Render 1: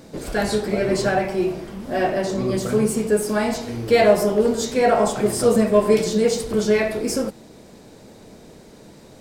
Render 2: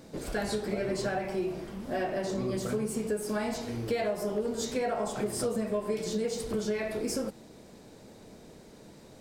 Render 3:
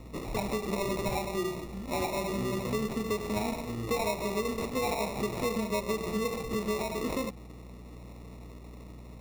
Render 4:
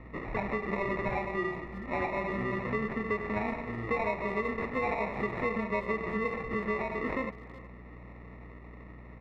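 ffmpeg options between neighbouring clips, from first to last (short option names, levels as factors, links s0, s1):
-af "acompressor=threshold=0.0891:ratio=6,volume=0.473"
-filter_complex "[0:a]aeval=exprs='val(0)+0.00501*(sin(2*PI*60*n/s)+sin(2*PI*2*60*n/s)/2+sin(2*PI*3*60*n/s)/3+sin(2*PI*4*60*n/s)/4+sin(2*PI*5*60*n/s)/5)':c=same,acrossover=split=260[s0][s1];[s1]acrusher=samples=28:mix=1:aa=0.000001[s2];[s0][s2]amix=inputs=2:normalize=0"
-filter_complex "[0:a]lowpass=f=1800:t=q:w=5.5,asplit=2[s0][s1];[s1]adelay=370,highpass=300,lowpass=3400,asoftclip=type=hard:threshold=0.0562,volume=0.141[s2];[s0][s2]amix=inputs=2:normalize=0,volume=0.794"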